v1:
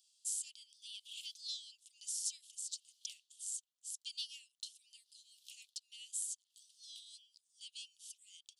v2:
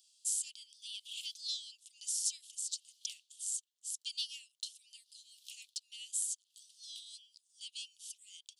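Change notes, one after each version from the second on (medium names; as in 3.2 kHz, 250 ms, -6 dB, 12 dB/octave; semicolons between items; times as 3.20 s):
speech +4.5 dB; background +4.5 dB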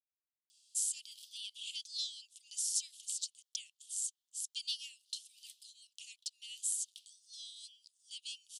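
speech: entry +0.50 s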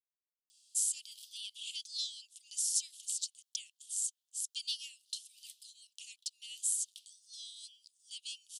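master: add treble shelf 8 kHz +5 dB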